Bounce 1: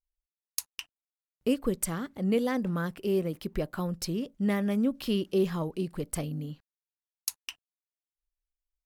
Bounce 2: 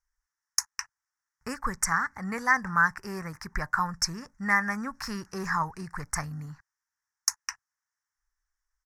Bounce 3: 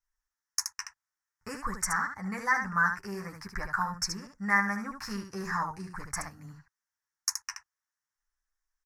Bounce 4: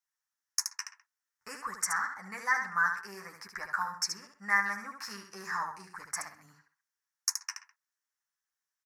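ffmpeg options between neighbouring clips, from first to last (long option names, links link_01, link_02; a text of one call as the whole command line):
ffmpeg -i in.wav -af "firequalizer=gain_entry='entry(110,0);entry(170,-9);entry(300,-18);entry(560,-16);entry(870,8);entry(1800,14);entry(3100,-27);entry(5500,10);entry(8600,-2);entry(15000,-12)':delay=0.05:min_phase=1,volume=4.5dB" out.wav
ffmpeg -i in.wav -af "aecho=1:1:10|75:0.708|0.531,volume=-5.5dB" out.wav
ffmpeg -i in.wav -filter_complex "[0:a]highpass=frequency=990:poles=1,asplit=2[link_01][link_02];[link_02]adelay=130,highpass=300,lowpass=3400,asoftclip=type=hard:threshold=-19dB,volume=-15dB[link_03];[link_01][link_03]amix=inputs=2:normalize=0" out.wav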